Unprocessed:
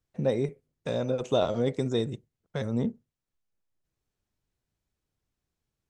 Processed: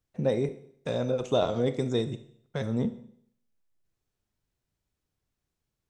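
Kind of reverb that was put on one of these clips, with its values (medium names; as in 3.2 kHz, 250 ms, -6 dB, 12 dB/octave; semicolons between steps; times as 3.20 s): Schroeder reverb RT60 0.65 s, combs from 25 ms, DRR 11.5 dB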